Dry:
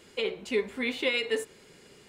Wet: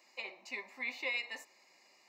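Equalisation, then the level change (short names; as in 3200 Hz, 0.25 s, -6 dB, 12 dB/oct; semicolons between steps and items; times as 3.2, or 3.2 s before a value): ladder high-pass 350 Hz, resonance 25%; fixed phaser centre 2200 Hz, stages 8; +1.0 dB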